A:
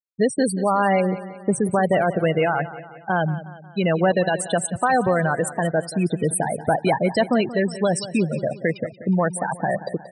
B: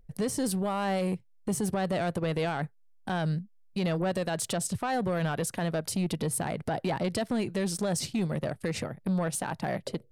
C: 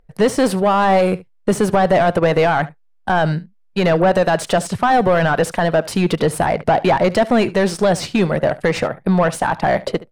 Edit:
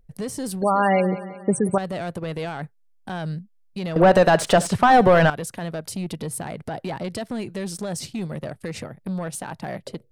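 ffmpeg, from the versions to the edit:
-filter_complex "[1:a]asplit=3[a][b][c];[a]atrim=end=0.622[d];[0:a]atrim=start=0.618:end=1.782[e];[b]atrim=start=1.778:end=3.962[f];[2:a]atrim=start=3.958:end=5.302[g];[c]atrim=start=5.298[h];[d][e]acrossfade=d=0.004:c1=hsin:c2=hsin[i];[i][f]acrossfade=d=0.004:c1=hsin:c2=hsin[j];[j][g]acrossfade=d=0.004:c1=hsin:c2=hsin[k];[k][h]acrossfade=d=0.004:c1=hsin:c2=hsin"

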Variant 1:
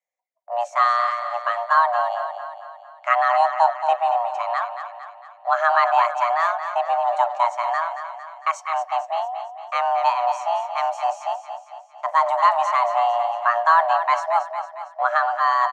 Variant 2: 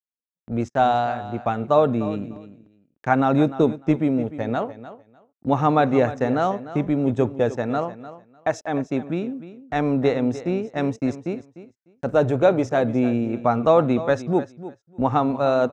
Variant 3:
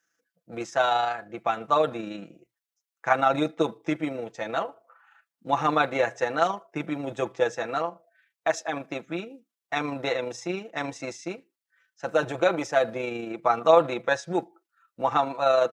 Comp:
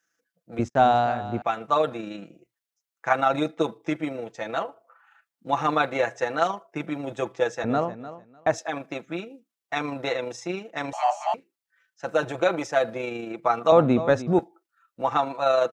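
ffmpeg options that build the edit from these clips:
-filter_complex "[1:a]asplit=3[a][b][c];[2:a]asplit=5[d][e][f][g][h];[d]atrim=end=0.592[i];[a]atrim=start=0.588:end=1.422[j];[e]atrim=start=1.418:end=7.642[k];[b]atrim=start=7.638:end=8.582[l];[f]atrim=start=8.578:end=10.932[m];[0:a]atrim=start=10.928:end=11.342[n];[g]atrim=start=11.338:end=13.722[o];[c]atrim=start=13.718:end=14.392[p];[h]atrim=start=14.388[q];[i][j]acrossfade=d=0.004:c1=hsin:c2=hsin[r];[r][k]acrossfade=d=0.004:c1=hsin:c2=hsin[s];[s][l]acrossfade=d=0.004:c1=hsin:c2=hsin[t];[t][m]acrossfade=d=0.004:c1=hsin:c2=hsin[u];[u][n]acrossfade=d=0.004:c1=hsin:c2=hsin[v];[v][o]acrossfade=d=0.004:c1=hsin:c2=hsin[w];[w][p]acrossfade=d=0.004:c1=hsin:c2=hsin[x];[x][q]acrossfade=d=0.004:c1=hsin:c2=hsin"

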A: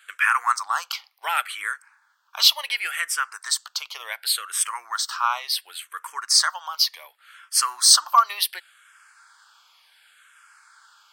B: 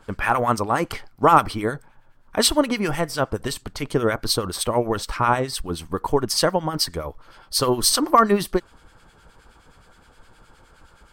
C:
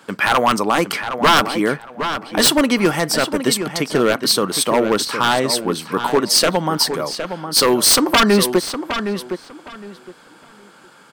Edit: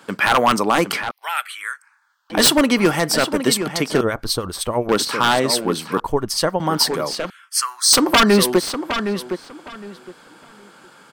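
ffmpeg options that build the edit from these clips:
-filter_complex "[0:a]asplit=2[a][b];[1:a]asplit=2[c][d];[2:a]asplit=5[e][f][g][h][i];[e]atrim=end=1.112[j];[a]atrim=start=1.108:end=2.302[k];[f]atrim=start=2.298:end=4.012[l];[c]atrim=start=4.008:end=4.892[m];[g]atrim=start=4.888:end=6.002[n];[d]atrim=start=5.998:end=6.602[o];[h]atrim=start=6.598:end=7.302[p];[b]atrim=start=7.298:end=7.932[q];[i]atrim=start=7.928[r];[j][k]acrossfade=d=0.004:c1=hsin:c2=hsin[s];[s][l]acrossfade=d=0.004:c1=hsin:c2=hsin[t];[t][m]acrossfade=d=0.004:c1=hsin:c2=hsin[u];[u][n]acrossfade=d=0.004:c1=hsin:c2=hsin[v];[v][o]acrossfade=d=0.004:c1=hsin:c2=hsin[w];[w][p]acrossfade=d=0.004:c1=hsin:c2=hsin[x];[x][q]acrossfade=d=0.004:c1=hsin:c2=hsin[y];[y][r]acrossfade=d=0.004:c1=hsin:c2=hsin"

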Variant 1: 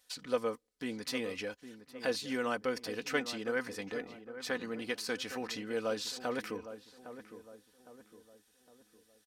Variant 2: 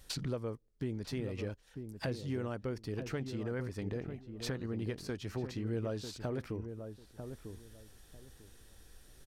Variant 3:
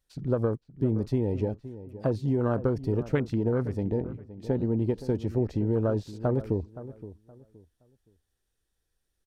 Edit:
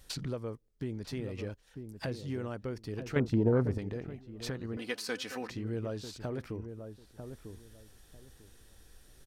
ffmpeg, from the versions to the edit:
-filter_complex "[1:a]asplit=3[a][b][c];[a]atrim=end=3.162[d];[2:a]atrim=start=3.158:end=3.782[e];[b]atrim=start=3.778:end=4.772[f];[0:a]atrim=start=4.768:end=5.502[g];[c]atrim=start=5.498[h];[d][e]acrossfade=d=0.004:c1=hsin:c2=hsin[i];[i][f]acrossfade=d=0.004:c1=hsin:c2=hsin[j];[j][g]acrossfade=d=0.004:c1=hsin:c2=hsin[k];[k][h]acrossfade=d=0.004:c1=hsin:c2=hsin"

